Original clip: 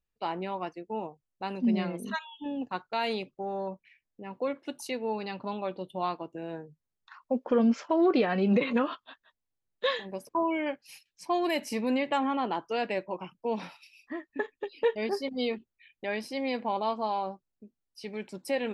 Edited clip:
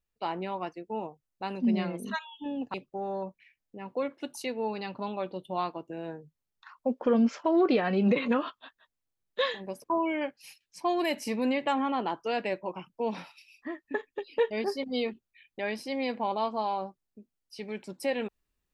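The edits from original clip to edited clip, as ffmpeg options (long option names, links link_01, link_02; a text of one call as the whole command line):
ffmpeg -i in.wav -filter_complex "[0:a]asplit=2[link_01][link_02];[link_01]atrim=end=2.742[link_03];[link_02]atrim=start=3.188[link_04];[link_03][link_04]acrossfade=duration=0.004:curve1=hsin:curve2=hsin" out.wav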